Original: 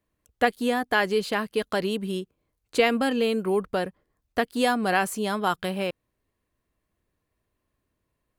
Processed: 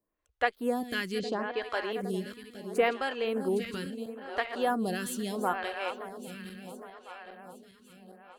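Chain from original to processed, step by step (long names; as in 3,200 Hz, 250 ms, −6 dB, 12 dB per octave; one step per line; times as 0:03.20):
feedback delay that plays each chunk backwards 406 ms, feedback 72%, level −10 dB
0:01.19–0:01.62: low-pass filter 6,600 Hz 24 dB per octave
0:04.58–0:05.25: parametric band 2,300 Hz −12 dB 0.29 octaves
phaser with staggered stages 0.74 Hz
level −3.5 dB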